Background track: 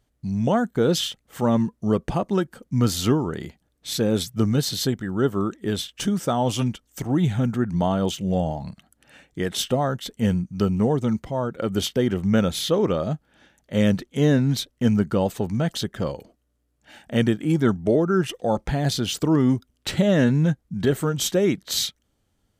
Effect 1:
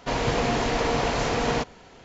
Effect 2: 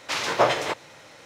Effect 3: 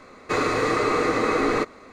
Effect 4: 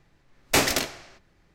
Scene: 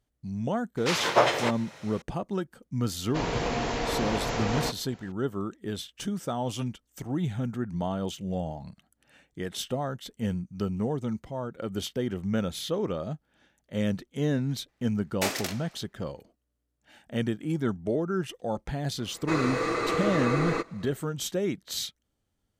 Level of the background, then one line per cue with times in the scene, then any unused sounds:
background track −8.5 dB
0:00.77: mix in 2 −1 dB
0:03.08: mix in 1 −5 dB
0:14.68: mix in 4 −8.5 dB + high-pass filter 250 Hz
0:18.98: mix in 3 −6.5 dB + comb filter 6 ms, depth 39%

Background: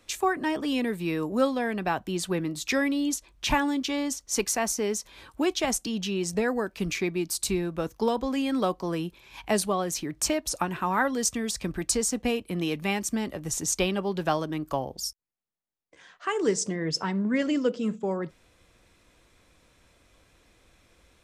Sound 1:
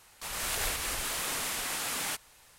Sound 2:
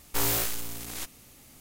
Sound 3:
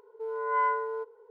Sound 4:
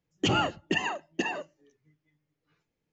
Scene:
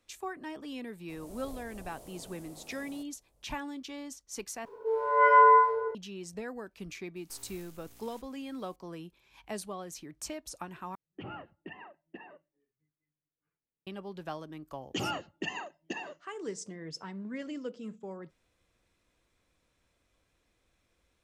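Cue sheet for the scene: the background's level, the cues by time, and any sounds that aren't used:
background −13.5 dB
0:00.87: mix in 1 −7 dB + drawn EQ curve 630 Hz 0 dB, 1,600 Hz −28 dB, 2,700 Hz −25 dB, 9,300 Hz −14 dB
0:04.65: overwrite with 3 −2 dB + rectangular room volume 590 cubic metres, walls mixed, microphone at 5 metres
0:07.16: mix in 2 −16 dB + downward compressor, threshold −35 dBFS
0:10.95: overwrite with 4 −17 dB + low-pass filter 2,400 Hz 24 dB per octave
0:14.71: mix in 4 −8 dB + low-shelf EQ 84 Hz −8.5 dB

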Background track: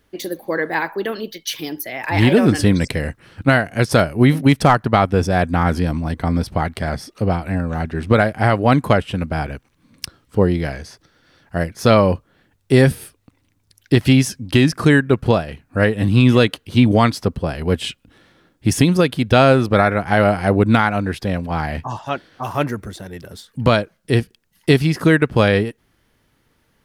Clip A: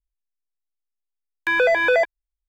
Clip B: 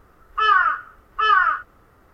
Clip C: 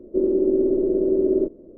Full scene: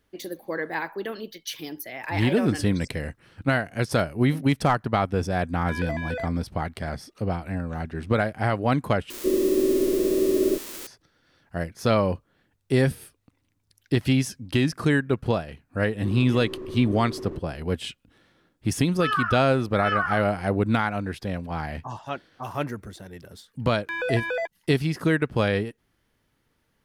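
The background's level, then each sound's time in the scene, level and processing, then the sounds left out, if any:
background track −8.5 dB
0:04.22: mix in A −15 dB
0:09.10: overwrite with C −2 dB + spike at every zero crossing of −18.5 dBFS
0:15.91: mix in C −8.5 dB + slew-rate limiting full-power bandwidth 17 Hz
0:18.63: mix in B −9.5 dB
0:22.42: mix in A −10.5 dB

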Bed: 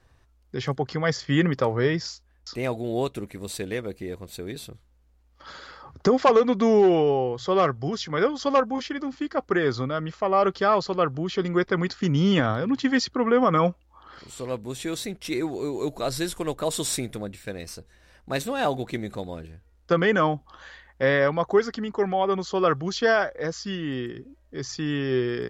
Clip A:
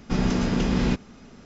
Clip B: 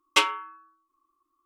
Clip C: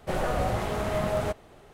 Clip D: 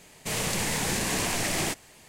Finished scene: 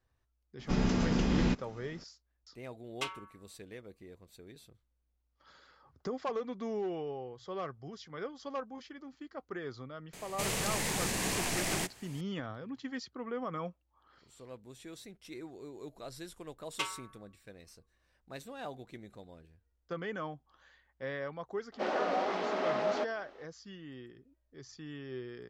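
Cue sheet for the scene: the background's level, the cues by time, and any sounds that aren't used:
bed −18 dB
0:00.59: mix in A −6 dB
0:02.85: mix in B −17 dB
0:10.13: mix in D −5.5 dB + multiband upward and downward compressor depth 40%
0:16.63: mix in B −15 dB
0:21.72: mix in C −2.5 dB + elliptic band-pass filter 260–5,400 Hz

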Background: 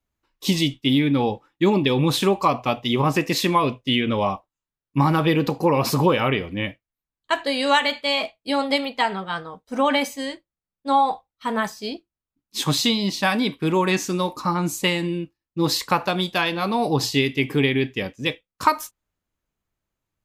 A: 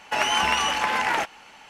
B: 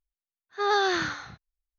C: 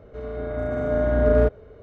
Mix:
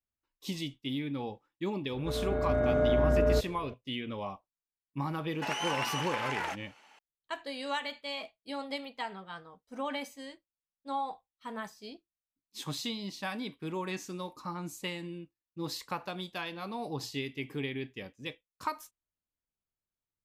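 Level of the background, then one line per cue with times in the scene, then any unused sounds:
background −16 dB
0:01.92: mix in C −1 dB + downward compressor, threshold −20 dBFS
0:05.30: mix in A −11.5 dB + high-pass filter 260 Hz
not used: B

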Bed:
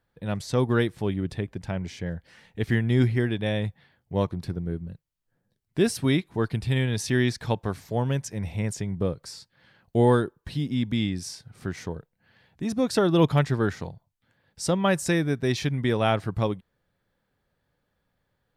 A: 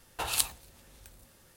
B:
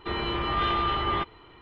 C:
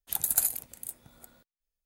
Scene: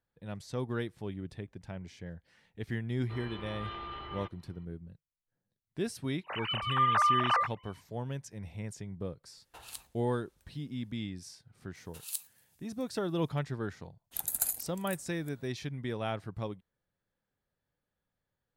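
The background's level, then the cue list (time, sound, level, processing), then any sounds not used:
bed −12 dB
0:03.04: mix in B −16 dB
0:06.23: mix in B −1.5 dB, fades 0.05 s + three sine waves on the formant tracks
0:09.35: mix in A −17.5 dB
0:11.75: mix in A −10.5 dB + first difference
0:14.04: mix in C −5.5 dB

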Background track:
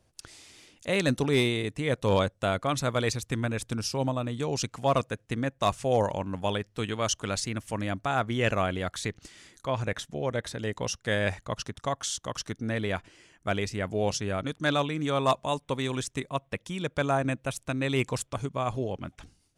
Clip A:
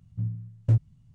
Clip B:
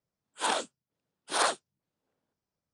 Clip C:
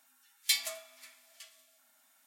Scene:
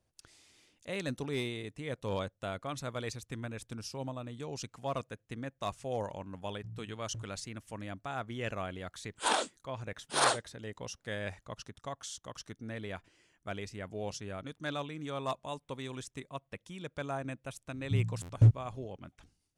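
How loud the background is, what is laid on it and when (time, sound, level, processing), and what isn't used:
background track −11 dB
0:06.46: mix in A −12.5 dB + downward compressor, threshold −28 dBFS
0:08.82: mix in B −0.5 dB
0:17.73: mix in A + buffer that repeats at 0:00.48, times 6
not used: C

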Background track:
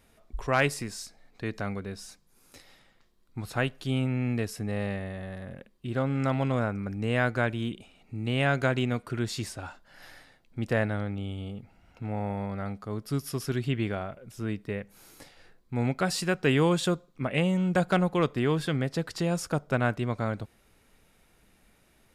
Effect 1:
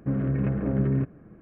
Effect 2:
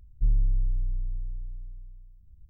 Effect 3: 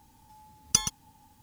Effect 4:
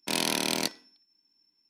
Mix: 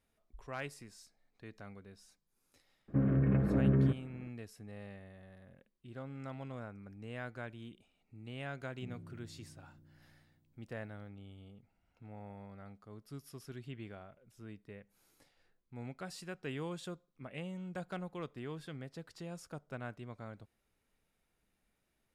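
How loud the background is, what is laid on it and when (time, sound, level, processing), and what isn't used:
background track −17.5 dB
0:02.88: mix in 1 −3.5 dB
0:08.60: mix in 2 −0.5 dB + high-pass filter 160 Hz 24 dB per octave
not used: 3, 4

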